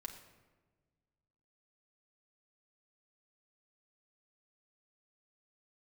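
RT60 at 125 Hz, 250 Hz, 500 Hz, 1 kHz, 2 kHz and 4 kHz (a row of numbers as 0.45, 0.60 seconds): 2.2, 1.9, 1.6, 1.2, 1.0, 0.75 seconds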